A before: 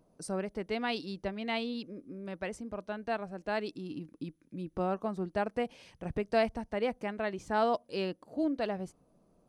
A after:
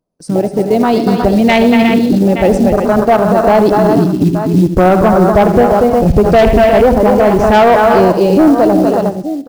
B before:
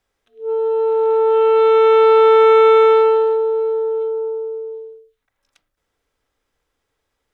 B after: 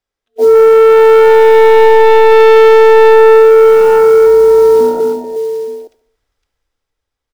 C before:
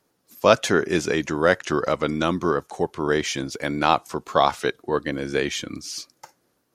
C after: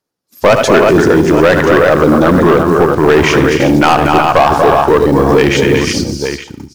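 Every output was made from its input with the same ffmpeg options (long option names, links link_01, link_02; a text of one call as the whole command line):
ffmpeg -i in.wav -filter_complex "[0:a]agate=range=-16dB:threshold=-49dB:ratio=16:detection=peak,dynaudnorm=framelen=210:gausssize=11:maxgain=10.5dB,asoftclip=type=hard:threshold=-6.5dB,asubboost=boost=2:cutoff=120,afwtdn=0.0562,asplit=2[link_01][link_02];[link_02]aecho=0:1:83|239|251|304|361|872:0.133|0.355|0.168|0.112|0.335|0.112[link_03];[link_01][link_03]amix=inputs=2:normalize=0,acrusher=bits=7:mode=log:mix=0:aa=0.000001,acompressor=threshold=-13dB:ratio=6,equalizer=frequency=4900:width=1.8:gain=4,asoftclip=type=tanh:threshold=-18.5dB,asplit=2[link_04][link_05];[link_05]aecho=0:1:71|142|213|284:0.141|0.0678|0.0325|0.0156[link_06];[link_04][link_06]amix=inputs=2:normalize=0,alimiter=level_in=24.5dB:limit=-1dB:release=50:level=0:latency=1,volume=-1dB" out.wav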